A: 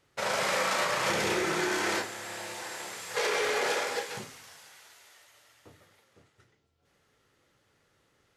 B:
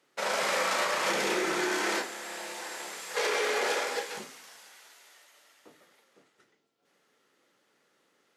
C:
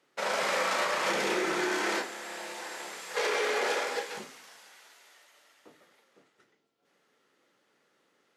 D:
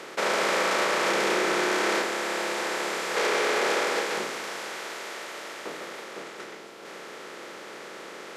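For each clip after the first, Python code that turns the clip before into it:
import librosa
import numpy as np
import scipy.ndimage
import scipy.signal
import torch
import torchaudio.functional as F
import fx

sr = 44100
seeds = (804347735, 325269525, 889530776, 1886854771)

y1 = scipy.signal.sosfilt(scipy.signal.butter(4, 200.0, 'highpass', fs=sr, output='sos'), x)
y2 = fx.high_shelf(y1, sr, hz=5800.0, db=-5.0)
y3 = fx.bin_compress(y2, sr, power=0.4)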